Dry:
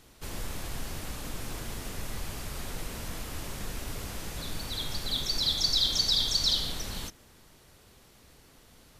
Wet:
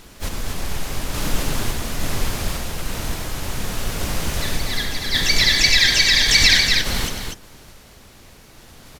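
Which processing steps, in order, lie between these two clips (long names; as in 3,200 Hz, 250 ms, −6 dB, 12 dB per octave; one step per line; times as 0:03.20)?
sample-and-hold tremolo
pitch-shifted copies added −12 semitones −2 dB, +5 semitones −9 dB
loudspeakers that aren't time-aligned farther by 33 metres −10 dB, 83 metres −6 dB
boost into a limiter +13 dB
level −1 dB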